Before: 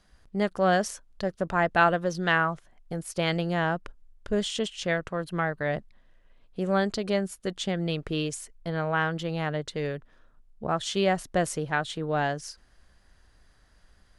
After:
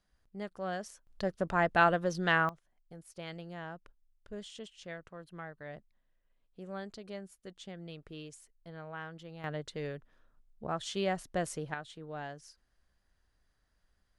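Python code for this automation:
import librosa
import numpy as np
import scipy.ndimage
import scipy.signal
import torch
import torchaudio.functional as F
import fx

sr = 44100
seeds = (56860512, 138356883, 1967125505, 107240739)

y = fx.gain(x, sr, db=fx.steps((0.0, -14.5), (1.07, -4.0), (2.49, -17.0), (9.44, -8.0), (11.74, -15.0)))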